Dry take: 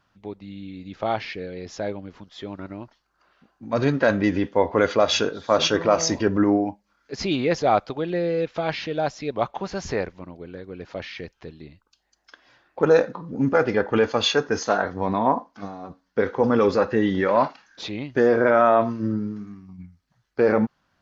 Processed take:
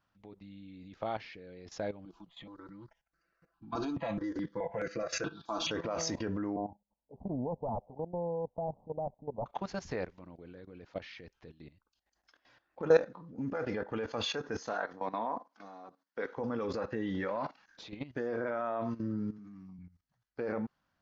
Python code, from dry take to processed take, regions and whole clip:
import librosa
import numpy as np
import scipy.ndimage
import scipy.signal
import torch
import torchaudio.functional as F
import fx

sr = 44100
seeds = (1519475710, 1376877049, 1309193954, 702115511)

y = fx.chain(x, sr, fx.comb(ms=6.0, depth=0.92),
    fx.phaser_held(hz=4.7, low_hz=520.0, high_hz=3400.0), at=(2.05, 5.71))
y = fx.chain(y, sr, fx.self_delay(depth_ms=0.66),
    fx.steep_lowpass(hz=920.0, slope=72),
    fx.peak_eq(hz=340.0, db=-11.0, octaves=0.46), at=(6.56, 9.46))
y = fx.chain(y, sr, fx.highpass(hz=210.0, slope=12),
    fx.low_shelf(hz=340.0, db=-8.5), at=(14.73, 16.37))
y = fx.chain(y, sr, fx.highpass(hz=150.0, slope=12),
    fx.low_shelf(hz=220.0, db=6.0), at=(19.38, 19.79))
y = fx.high_shelf(y, sr, hz=2500.0, db=-2.0)
y = fx.notch(y, sr, hz=390.0, q=13.0)
y = fx.level_steps(y, sr, step_db=15)
y = y * 10.0 ** (-4.5 / 20.0)